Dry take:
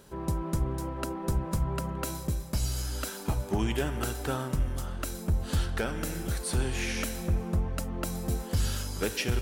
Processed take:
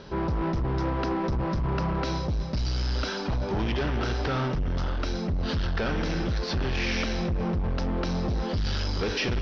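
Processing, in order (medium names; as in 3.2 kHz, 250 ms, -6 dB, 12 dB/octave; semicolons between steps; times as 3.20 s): in parallel at +0.5 dB: compressor with a negative ratio -33 dBFS, ratio -1; on the sum: overload inside the chain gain 26.5 dB; steep low-pass 5.6 kHz 72 dB/octave; trim +2.5 dB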